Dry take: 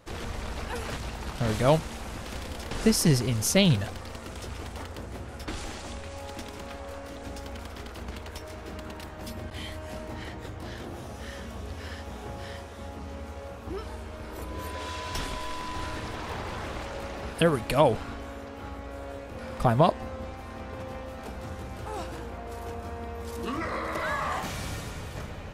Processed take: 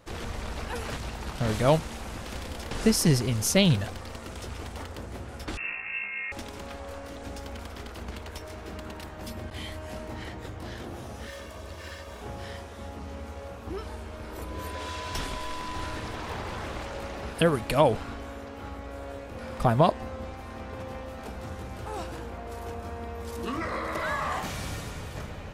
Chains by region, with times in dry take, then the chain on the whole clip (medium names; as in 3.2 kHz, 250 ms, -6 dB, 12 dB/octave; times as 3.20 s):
5.57–6.32 s: distance through air 440 m + flutter echo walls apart 3.1 m, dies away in 0.33 s + frequency inversion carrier 2.7 kHz
11.27–12.21 s: comb filter that takes the minimum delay 1.8 ms + high-pass 95 Hz 6 dB/octave + comb 3.3 ms, depth 41%
whole clip: none